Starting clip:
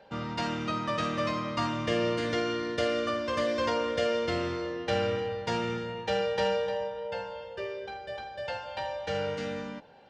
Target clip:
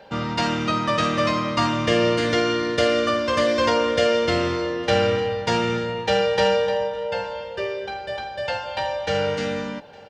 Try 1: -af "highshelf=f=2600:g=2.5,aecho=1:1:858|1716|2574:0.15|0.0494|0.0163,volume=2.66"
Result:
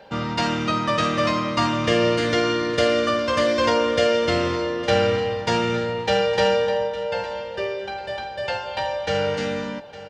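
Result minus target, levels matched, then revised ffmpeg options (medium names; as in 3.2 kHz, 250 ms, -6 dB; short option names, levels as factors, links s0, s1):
echo-to-direct +8.5 dB
-af "highshelf=f=2600:g=2.5,aecho=1:1:858|1716:0.0562|0.0186,volume=2.66"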